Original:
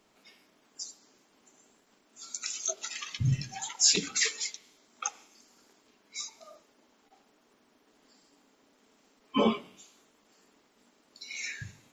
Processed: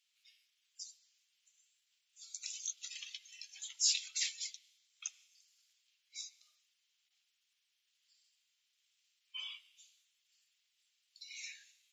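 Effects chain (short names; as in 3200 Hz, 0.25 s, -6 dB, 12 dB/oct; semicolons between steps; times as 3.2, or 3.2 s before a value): ladder high-pass 2400 Hz, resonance 35%; gain -2 dB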